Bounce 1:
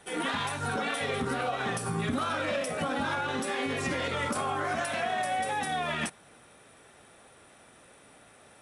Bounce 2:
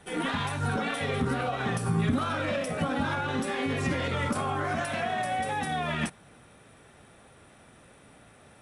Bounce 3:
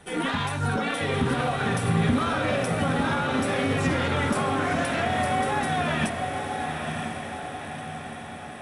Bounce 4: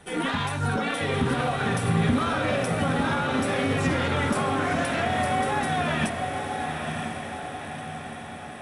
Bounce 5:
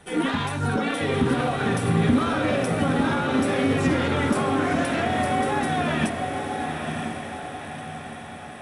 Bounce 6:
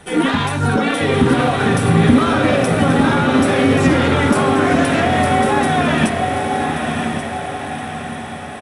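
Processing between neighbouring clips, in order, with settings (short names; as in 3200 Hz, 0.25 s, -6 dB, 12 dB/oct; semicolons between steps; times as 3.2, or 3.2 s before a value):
tone controls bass +8 dB, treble -3 dB
diffused feedback echo 0.993 s, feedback 56%, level -5 dB; gain +3 dB
nothing audible
dynamic EQ 310 Hz, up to +6 dB, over -40 dBFS, Q 1.3
echo 1.132 s -11 dB; gain +8 dB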